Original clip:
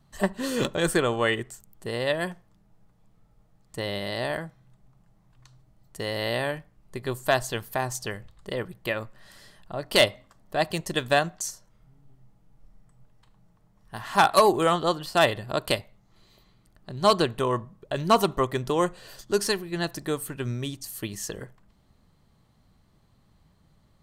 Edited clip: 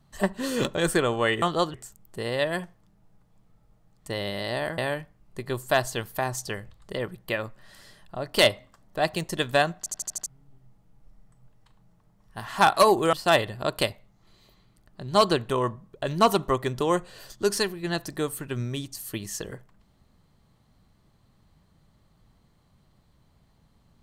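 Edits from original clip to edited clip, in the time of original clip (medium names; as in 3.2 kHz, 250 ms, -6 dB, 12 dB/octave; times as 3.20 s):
4.46–6.35 s: delete
11.35 s: stutter in place 0.08 s, 6 plays
14.70–15.02 s: move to 1.42 s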